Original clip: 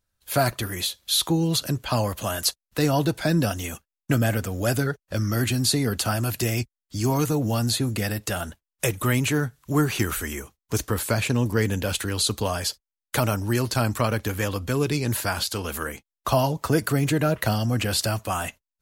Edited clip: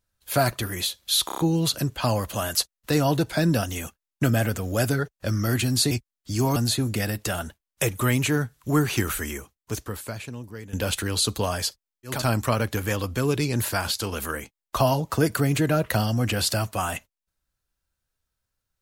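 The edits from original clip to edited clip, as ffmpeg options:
-filter_complex "[0:a]asplit=9[a][b][c][d][e][f][g][h][i];[a]atrim=end=1.292[j];[b]atrim=start=1.258:end=1.292[k];[c]atrim=start=1.258:end=1.292[l];[d]atrim=start=1.258:end=1.292[m];[e]atrim=start=1.258:end=5.792[n];[f]atrim=start=6.558:end=7.212[o];[g]atrim=start=7.578:end=11.75,asetpts=PTS-STARTPTS,afade=t=out:st=2.732:d=1.44:c=qua:silence=0.141254[p];[h]atrim=start=11.75:end=13.29,asetpts=PTS-STARTPTS,afade=t=in:d=0.004:c=hsin:silence=0.141254[q];[i]atrim=start=13.55[r];[j][k]acrossfade=d=0.004:c1=hsin:c2=hsin[s];[s][l]acrossfade=d=0.004:c1=hsin:c2=hsin[t];[t][m]acrossfade=d=0.004:c1=hsin:c2=hsin[u];[u][n]acrossfade=d=0.004:c1=hsin:c2=hsin[v];[v][o]acrossfade=d=0.004:c1=hsin:c2=hsin[w];[p][q]concat=n=2:v=0:a=1[x];[w][x]acrossfade=d=0.004:c1=hsin:c2=hsin[y];[y][r]acrossfade=d=0.24:c1=tri:c2=tri"

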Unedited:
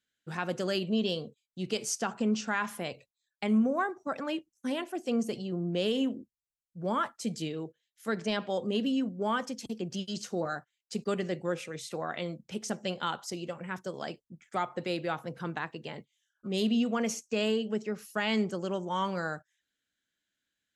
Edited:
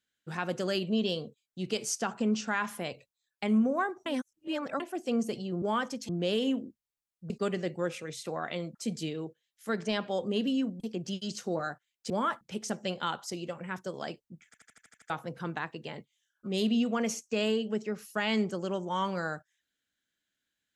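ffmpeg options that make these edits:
-filter_complex "[0:a]asplit=18[a][b][c][d][e][f][g][h][i][j][k][l][m][n][o][p][q][r];[a]atrim=end=4.062[s];[b]atrim=start=4.058:end=4.802,asetpts=PTS-STARTPTS,areverse[t];[c]atrim=start=4.798:end=5.622[u];[d]atrim=start=9.188:end=9.662[v];[e]atrim=start=5.618:end=6.832[w];[f]atrim=start=10.958:end=12.412[x];[g]atrim=start=7.138:end=9.192[y];[h]atrim=start=9.658:end=10.962[z];[i]atrim=start=6.828:end=7.142[aa];[j]atrim=start=12.408:end=14.542[ab];[k]atrim=start=14.458:end=14.542[ac];[l]atrim=start=14.458:end=14.542[ad];[m]atrim=start=14.458:end=14.542[ae];[n]atrim=start=14.458:end=14.542[af];[o]atrim=start=14.458:end=14.542[ag];[p]atrim=start=14.458:end=14.542[ah];[q]atrim=start=14.458:end=14.542[ai];[r]atrim=start=15.098[aj];[s][t]acrossfade=d=0.004:c1=hsin:c2=hsin[ak];[ak][u]acrossfade=d=0.004:c1=hsin:c2=hsin[al];[al][v]acrossfade=d=0.004:c1=hsin:c2=hsin[am];[am][w]acrossfade=d=0.004:c1=hsin:c2=hsin[an];[an][x]acrossfade=d=0.004:c1=hsin:c2=hsin[ao];[ao][y]acrossfade=d=0.004:c1=hsin:c2=hsin[ap];[ap][z]acrossfade=d=0.004:c1=hsin:c2=hsin[aq];[aq][aa]acrossfade=d=0.004:c1=hsin:c2=hsin[ar];[ar][ab]acrossfade=d=0.004:c1=hsin:c2=hsin[as];[as][ac]acrossfade=d=0.004:c1=hsin:c2=hsin[at];[at][ad]acrossfade=d=0.004:c1=hsin:c2=hsin[au];[au][ae]acrossfade=d=0.004:c1=hsin:c2=hsin[av];[av][af]acrossfade=d=0.004:c1=hsin:c2=hsin[aw];[aw][ag]acrossfade=d=0.004:c1=hsin:c2=hsin[ax];[ax][ah]acrossfade=d=0.004:c1=hsin:c2=hsin[ay];[ay][ai]acrossfade=d=0.004:c1=hsin:c2=hsin[az];[az][aj]acrossfade=d=0.004:c1=hsin:c2=hsin"

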